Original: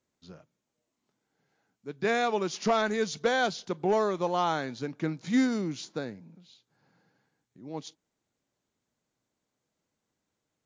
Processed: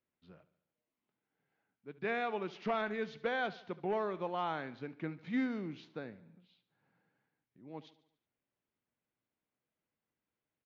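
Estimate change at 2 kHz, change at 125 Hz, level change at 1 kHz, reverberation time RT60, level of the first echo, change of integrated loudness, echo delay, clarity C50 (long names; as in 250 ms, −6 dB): −7.0 dB, −9.5 dB, −8.5 dB, no reverb audible, −18.0 dB, −9.0 dB, 72 ms, no reverb audible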